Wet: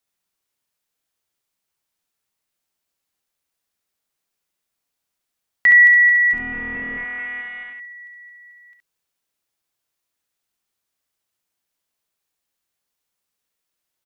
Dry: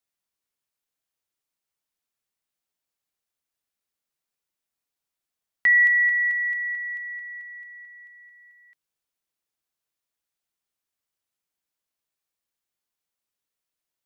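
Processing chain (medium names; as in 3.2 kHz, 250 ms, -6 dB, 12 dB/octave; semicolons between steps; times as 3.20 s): 6.33–7.73 s: one-bit delta coder 16 kbps, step -37.5 dBFS; early reflections 34 ms -16 dB, 58 ms -11 dB, 69 ms -4.5 dB; trim +5 dB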